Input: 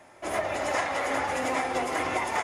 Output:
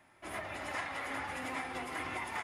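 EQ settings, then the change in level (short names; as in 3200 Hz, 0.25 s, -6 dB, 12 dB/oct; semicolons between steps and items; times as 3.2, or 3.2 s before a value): bell 550 Hz -10 dB 1.4 oct; bell 6500 Hz -9 dB 0.77 oct; -6.5 dB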